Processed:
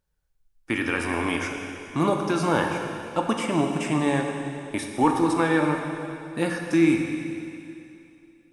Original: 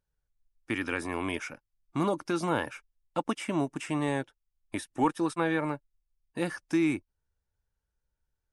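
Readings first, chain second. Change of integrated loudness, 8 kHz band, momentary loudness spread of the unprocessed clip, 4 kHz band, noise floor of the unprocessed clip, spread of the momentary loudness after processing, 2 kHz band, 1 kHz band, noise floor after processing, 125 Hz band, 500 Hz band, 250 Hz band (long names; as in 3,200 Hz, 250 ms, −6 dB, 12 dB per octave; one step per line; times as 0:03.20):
+6.5 dB, +7.0 dB, 12 LU, +7.0 dB, −84 dBFS, 12 LU, +7.0 dB, +7.0 dB, −65 dBFS, +7.5 dB, +7.0 dB, +7.5 dB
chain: dense smooth reverb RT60 2.7 s, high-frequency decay 1×, DRR 2 dB
level +5 dB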